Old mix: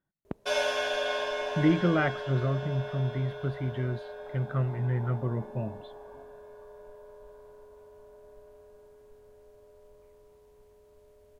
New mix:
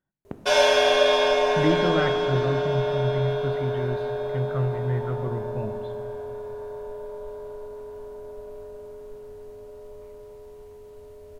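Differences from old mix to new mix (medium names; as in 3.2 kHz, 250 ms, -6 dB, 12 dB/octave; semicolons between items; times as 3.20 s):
background +7.5 dB; reverb: on, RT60 2.2 s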